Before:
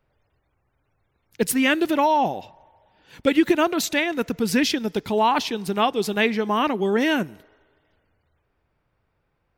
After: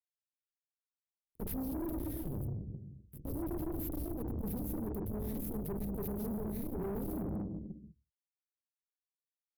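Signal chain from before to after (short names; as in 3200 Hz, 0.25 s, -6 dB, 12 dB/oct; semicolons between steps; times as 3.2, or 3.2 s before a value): graphic EQ 125/250/1000/4000/8000 Hz -7/-12/+9/+12/-10 dB; gate -43 dBFS, range -8 dB; in parallel at -5.5 dB: companded quantiser 4-bit; on the sum: fuzz box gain 28 dB, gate -37 dBFS; inverse Chebyshev band-stop 1000–6300 Hz, stop band 50 dB; passive tone stack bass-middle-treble 10-0-1; on a send at -10 dB: reverb RT60 1.2 s, pre-delay 3 ms; on the sum: limiter -37.5 dBFS, peak gain reduction 11 dB; tube stage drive 47 dB, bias 0.5; gain +13 dB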